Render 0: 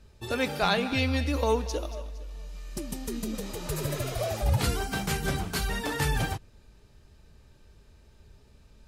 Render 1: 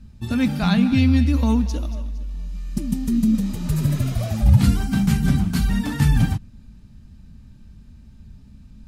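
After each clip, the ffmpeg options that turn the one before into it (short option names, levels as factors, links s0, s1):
-af "lowshelf=f=310:t=q:w=3:g=10.5"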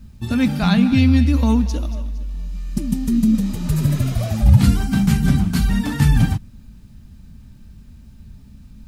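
-af "acrusher=bits=10:mix=0:aa=0.000001,volume=1.33"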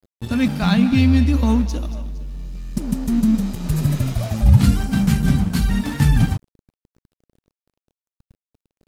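-af "aeval=exprs='sgn(val(0))*max(abs(val(0))-0.02,0)':c=same"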